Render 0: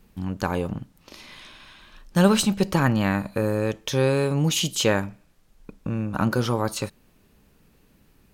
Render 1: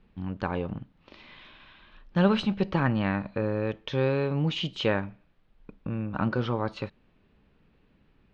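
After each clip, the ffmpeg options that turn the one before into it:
-af "lowpass=f=3.6k:w=0.5412,lowpass=f=3.6k:w=1.3066,volume=-4.5dB"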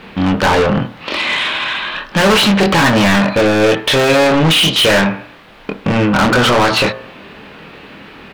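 -filter_complex "[0:a]asplit=2[a][b];[b]adelay=25,volume=-6dB[c];[a][c]amix=inputs=2:normalize=0,asplit=2[d][e];[e]highpass=f=720:p=1,volume=39dB,asoftclip=type=tanh:threshold=-7dB[f];[d][f]amix=inputs=2:normalize=0,lowpass=f=5.8k:p=1,volume=-6dB,bandreject=f=58.75:t=h:w=4,bandreject=f=117.5:t=h:w=4,bandreject=f=176.25:t=h:w=4,bandreject=f=235:t=h:w=4,bandreject=f=293.75:t=h:w=4,bandreject=f=352.5:t=h:w=4,bandreject=f=411.25:t=h:w=4,bandreject=f=470:t=h:w=4,bandreject=f=528.75:t=h:w=4,bandreject=f=587.5:t=h:w=4,bandreject=f=646.25:t=h:w=4,bandreject=f=705:t=h:w=4,bandreject=f=763.75:t=h:w=4,bandreject=f=822.5:t=h:w=4,bandreject=f=881.25:t=h:w=4,bandreject=f=940:t=h:w=4,bandreject=f=998.75:t=h:w=4,bandreject=f=1.0575k:t=h:w=4,bandreject=f=1.11625k:t=h:w=4,bandreject=f=1.175k:t=h:w=4,bandreject=f=1.23375k:t=h:w=4,bandreject=f=1.2925k:t=h:w=4,bandreject=f=1.35125k:t=h:w=4,bandreject=f=1.41k:t=h:w=4,bandreject=f=1.46875k:t=h:w=4,bandreject=f=1.5275k:t=h:w=4,bandreject=f=1.58625k:t=h:w=4,bandreject=f=1.645k:t=h:w=4,bandreject=f=1.70375k:t=h:w=4,bandreject=f=1.7625k:t=h:w=4,volume=3.5dB"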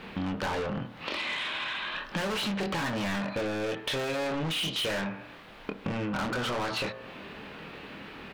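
-af "acompressor=threshold=-24dB:ratio=4,volume=-8dB"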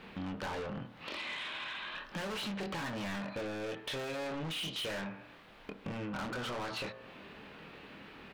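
-af "asoftclip=type=hard:threshold=-26.5dB,volume=-7.5dB"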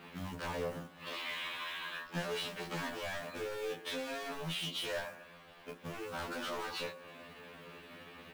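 -filter_complex "[0:a]acrossover=split=110[a][b];[a]tremolo=f=8.2:d=0.95[c];[b]acrusher=bits=4:mode=log:mix=0:aa=0.000001[d];[c][d]amix=inputs=2:normalize=0,afftfilt=real='re*2*eq(mod(b,4),0)':imag='im*2*eq(mod(b,4),0)':win_size=2048:overlap=0.75,volume=2dB"

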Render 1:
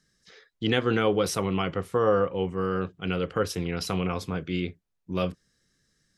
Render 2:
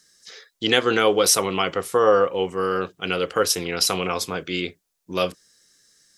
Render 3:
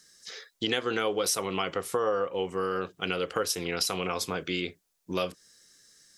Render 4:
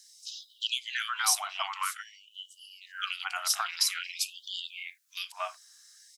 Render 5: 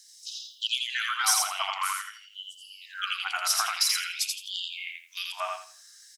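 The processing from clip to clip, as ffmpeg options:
-af "bass=f=250:g=-14,treble=f=4k:g=10,volume=7dB"
-af "acompressor=threshold=-28dB:ratio=3"
-filter_complex "[0:a]asubboost=boost=8.5:cutoff=160,acrossover=split=2300[a][b];[a]adelay=230[c];[c][b]amix=inputs=2:normalize=0,afftfilt=real='re*gte(b*sr/1024,610*pow(2900/610,0.5+0.5*sin(2*PI*0.5*pts/sr)))':imag='im*gte(b*sr/1024,610*pow(2900/610,0.5+0.5*sin(2*PI*0.5*pts/sr)))':win_size=1024:overlap=0.75,volume=3dB"
-filter_complex "[0:a]asplit=2[a][b];[b]volume=23.5dB,asoftclip=hard,volume=-23.5dB,volume=-11.5dB[c];[a][c]amix=inputs=2:normalize=0,aecho=1:1:83|166|249|332:0.708|0.177|0.0442|0.0111"

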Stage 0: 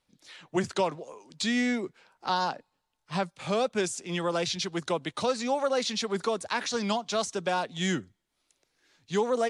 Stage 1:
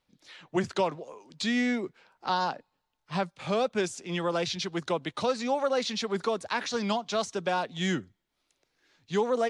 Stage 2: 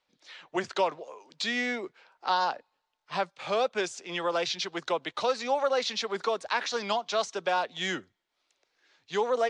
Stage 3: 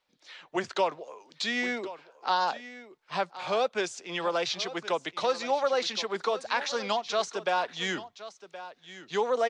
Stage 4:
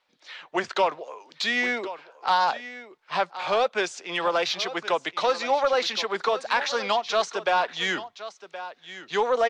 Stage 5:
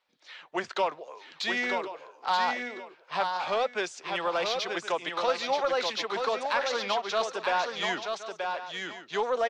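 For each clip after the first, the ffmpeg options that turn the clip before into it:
-af "equalizer=f=9.4k:t=o:w=1.1:g=-7.5"
-filter_complex "[0:a]acrossover=split=380 7900:gain=0.178 1 0.0891[a][b][c];[a][b][c]amix=inputs=3:normalize=0,volume=2dB"
-af "aecho=1:1:1071:0.178"
-filter_complex "[0:a]asplit=2[a][b];[b]highpass=f=720:p=1,volume=9dB,asoftclip=type=tanh:threshold=-14dB[c];[a][c]amix=inputs=2:normalize=0,lowpass=f=3.3k:p=1,volume=-6dB,volume=3dB"
-af "aecho=1:1:929:0.562,volume=-5dB"

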